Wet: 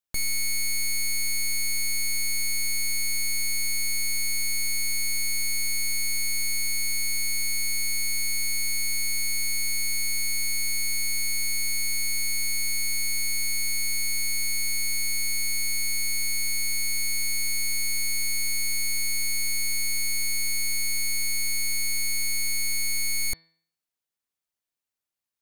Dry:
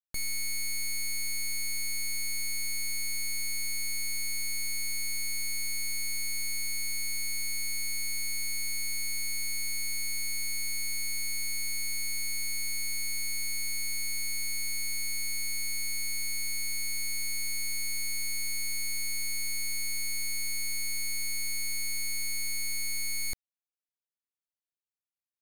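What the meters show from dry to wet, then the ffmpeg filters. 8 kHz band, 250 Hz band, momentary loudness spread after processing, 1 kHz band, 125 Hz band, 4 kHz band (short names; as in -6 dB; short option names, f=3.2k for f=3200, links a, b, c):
+6.0 dB, +6.0 dB, 0 LU, +6.0 dB, +6.0 dB, +6.0 dB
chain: -af "bandreject=f=163.5:t=h:w=4,bandreject=f=327:t=h:w=4,bandreject=f=490.5:t=h:w=4,bandreject=f=654:t=h:w=4,bandreject=f=817.5:t=h:w=4,bandreject=f=981:t=h:w=4,bandreject=f=1.1445k:t=h:w=4,bandreject=f=1.308k:t=h:w=4,bandreject=f=1.4715k:t=h:w=4,bandreject=f=1.635k:t=h:w=4,bandreject=f=1.7985k:t=h:w=4,bandreject=f=1.962k:t=h:w=4,bandreject=f=2.1255k:t=h:w=4,bandreject=f=2.289k:t=h:w=4,bandreject=f=2.4525k:t=h:w=4,bandreject=f=2.616k:t=h:w=4,bandreject=f=2.7795k:t=h:w=4,bandreject=f=2.943k:t=h:w=4,bandreject=f=3.1065k:t=h:w=4,bandreject=f=3.27k:t=h:w=4,bandreject=f=3.4335k:t=h:w=4,bandreject=f=3.597k:t=h:w=4,bandreject=f=3.7605k:t=h:w=4,bandreject=f=3.924k:t=h:w=4,bandreject=f=4.0875k:t=h:w=4,bandreject=f=4.251k:t=h:w=4,bandreject=f=4.4145k:t=h:w=4,bandreject=f=4.578k:t=h:w=4,bandreject=f=4.7415k:t=h:w=4,bandreject=f=4.905k:t=h:w=4,volume=6dB"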